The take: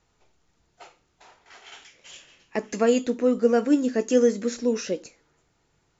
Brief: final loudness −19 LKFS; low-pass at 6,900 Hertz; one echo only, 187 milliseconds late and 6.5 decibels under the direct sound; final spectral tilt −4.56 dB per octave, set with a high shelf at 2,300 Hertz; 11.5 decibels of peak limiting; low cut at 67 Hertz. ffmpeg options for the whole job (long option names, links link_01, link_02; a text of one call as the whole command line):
ffmpeg -i in.wav -af "highpass=67,lowpass=6900,highshelf=frequency=2300:gain=-8.5,alimiter=limit=-19.5dB:level=0:latency=1,aecho=1:1:187:0.473,volume=9.5dB" out.wav